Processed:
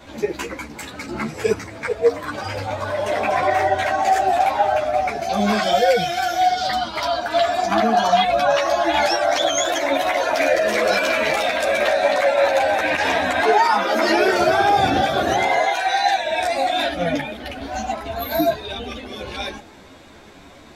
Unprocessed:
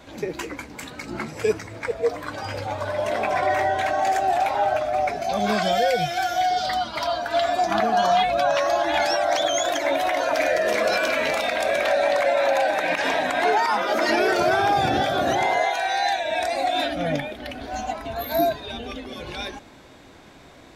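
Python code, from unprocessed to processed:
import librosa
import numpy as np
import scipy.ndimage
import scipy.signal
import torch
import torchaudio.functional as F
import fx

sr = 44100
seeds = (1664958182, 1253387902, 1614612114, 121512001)

y = fx.peak_eq(x, sr, hz=85.0, db=15.0, octaves=0.48, at=(12.41, 13.41))
y = fx.ensemble(y, sr)
y = F.gain(torch.from_numpy(y), 6.5).numpy()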